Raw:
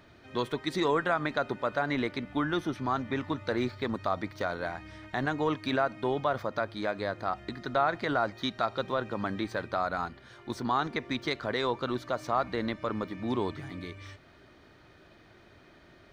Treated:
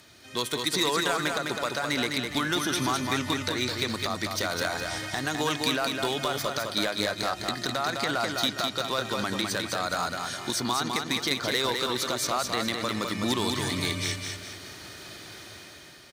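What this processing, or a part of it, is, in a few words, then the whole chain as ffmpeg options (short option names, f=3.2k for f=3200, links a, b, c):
FM broadcast chain: -filter_complex "[0:a]highpass=60,lowpass=7.9k,dynaudnorm=f=210:g=7:m=9.5dB,acrossover=split=1300|4300[a][b][c];[a]acompressor=threshold=-24dB:ratio=4[d];[b]acompressor=threshold=-31dB:ratio=4[e];[c]acompressor=threshold=-47dB:ratio=4[f];[d][e][f]amix=inputs=3:normalize=0,aemphasis=mode=production:type=75fm,alimiter=limit=-16dB:level=0:latency=1:release=300,asoftclip=type=hard:threshold=-19.5dB,lowpass=f=15k:w=0.5412,lowpass=f=15k:w=1.3066,aemphasis=mode=production:type=75fm,aecho=1:1:206|412|618|824|1030:0.596|0.238|0.0953|0.0381|0.0152"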